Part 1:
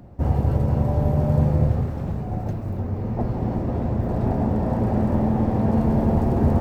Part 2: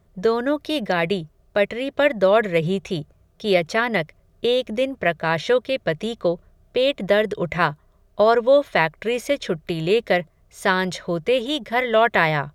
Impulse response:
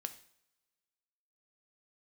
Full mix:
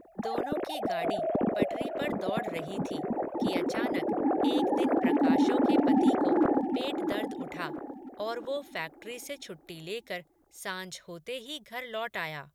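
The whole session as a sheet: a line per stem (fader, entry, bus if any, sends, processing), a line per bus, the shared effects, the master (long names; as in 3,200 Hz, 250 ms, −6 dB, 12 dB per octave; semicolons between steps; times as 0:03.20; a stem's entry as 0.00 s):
−7.5 dB, 0.00 s, no send, echo send −7.5 dB, three sine waves on the formant tracks; hard clipping −10.5 dBFS, distortion −24 dB
−5.5 dB, 0.00 s, no send, no echo send, first-order pre-emphasis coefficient 0.8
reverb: not used
echo: repeating echo 664 ms, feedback 44%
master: no processing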